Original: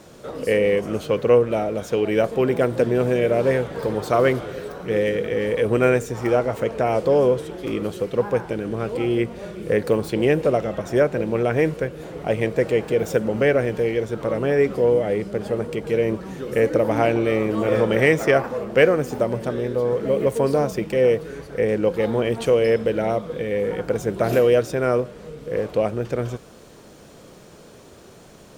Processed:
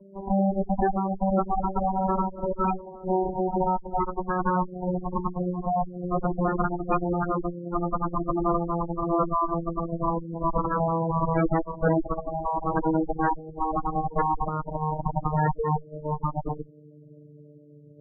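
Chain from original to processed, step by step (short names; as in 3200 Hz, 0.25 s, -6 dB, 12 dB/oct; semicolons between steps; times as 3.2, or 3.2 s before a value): vocoder on a gliding note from G3, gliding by -5 st; time stretch by phase-locked vocoder 0.63×; in parallel at +2 dB: compressor 5:1, threshold -32 dBFS, peak gain reduction 18.5 dB; on the sum: added harmonics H 3 -25 dB, 7 -13 dB, 8 -9 dB, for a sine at -2.5 dBFS; spectral gate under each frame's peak -10 dB strong; gain -7.5 dB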